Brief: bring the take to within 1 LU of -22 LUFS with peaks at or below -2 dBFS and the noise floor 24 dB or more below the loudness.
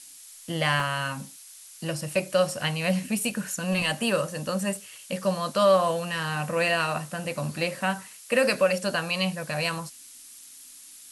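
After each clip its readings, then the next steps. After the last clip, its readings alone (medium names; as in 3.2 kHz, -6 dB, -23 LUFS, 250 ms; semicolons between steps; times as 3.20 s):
dropouts 3; longest dropout 1.6 ms; noise floor -48 dBFS; noise floor target -51 dBFS; loudness -26.5 LUFS; peak level -11.0 dBFS; loudness target -22.0 LUFS
-> interpolate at 0.80/5.88/7.61 s, 1.6 ms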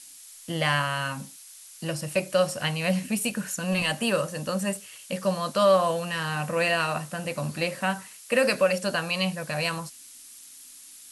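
dropouts 0; noise floor -48 dBFS; noise floor target -51 dBFS
-> noise print and reduce 6 dB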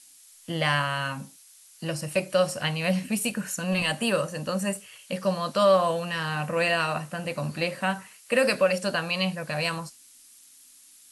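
noise floor -53 dBFS; loudness -26.5 LUFS; peak level -11.0 dBFS; loudness target -22.0 LUFS
-> trim +4.5 dB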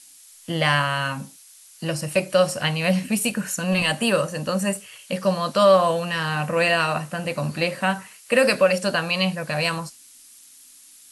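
loudness -22.0 LUFS; peak level -6.5 dBFS; noise floor -49 dBFS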